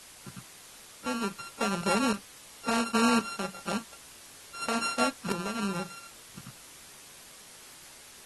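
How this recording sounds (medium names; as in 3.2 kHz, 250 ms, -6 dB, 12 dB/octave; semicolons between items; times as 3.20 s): a buzz of ramps at a fixed pitch in blocks of 32 samples; tremolo saw up 0.94 Hz, depth 65%; a quantiser's noise floor 8-bit, dither triangular; AAC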